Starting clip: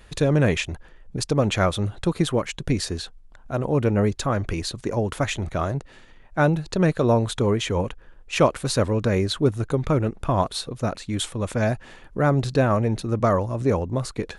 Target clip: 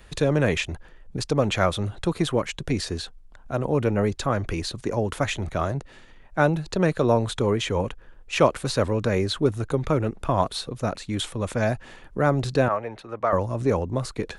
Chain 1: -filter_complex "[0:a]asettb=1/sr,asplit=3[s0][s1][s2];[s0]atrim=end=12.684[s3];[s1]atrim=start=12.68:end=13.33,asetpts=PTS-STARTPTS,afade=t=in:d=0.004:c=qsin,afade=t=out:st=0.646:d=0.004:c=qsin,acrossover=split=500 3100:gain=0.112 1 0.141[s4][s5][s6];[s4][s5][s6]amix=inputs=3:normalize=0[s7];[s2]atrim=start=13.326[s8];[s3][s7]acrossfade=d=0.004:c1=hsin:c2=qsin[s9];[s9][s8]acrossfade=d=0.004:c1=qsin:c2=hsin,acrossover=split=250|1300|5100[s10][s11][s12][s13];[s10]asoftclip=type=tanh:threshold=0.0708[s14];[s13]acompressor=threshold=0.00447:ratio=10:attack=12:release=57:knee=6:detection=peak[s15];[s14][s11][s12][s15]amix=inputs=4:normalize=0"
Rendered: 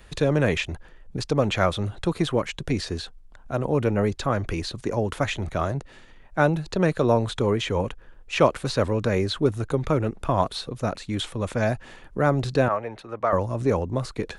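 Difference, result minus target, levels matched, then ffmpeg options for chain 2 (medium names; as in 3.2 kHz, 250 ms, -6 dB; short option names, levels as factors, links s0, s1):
compression: peak gain reduction +8 dB
-filter_complex "[0:a]asettb=1/sr,asplit=3[s0][s1][s2];[s0]atrim=end=12.684[s3];[s1]atrim=start=12.68:end=13.33,asetpts=PTS-STARTPTS,afade=t=in:d=0.004:c=qsin,afade=t=out:st=0.646:d=0.004:c=qsin,acrossover=split=500 3100:gain=0.112 1 0.141[s4][s5][s6];[s4][s5][s6]amix=inputs=3:normalize=0[s7];[s2]atrim=start=13.326[s8];[s3][s7]acrossfade=d=0.004:c1=hsin:c2=qsin[s9];[s9][s8]acrossfade=d=0.004:c1=qsin:c2=hsin,acrossover=split=250|1300|5100[s10][s11][s12][s13];[s10]asoftclip=type=tanh:threshold=0.0708[s14];[s13]acompressor=threshold=0.0126:ratio=10:attack=12:release=57:knee=6:detection=peak[s15];[s14][s11][s12][s15]amix=inputs=4:normalize=0"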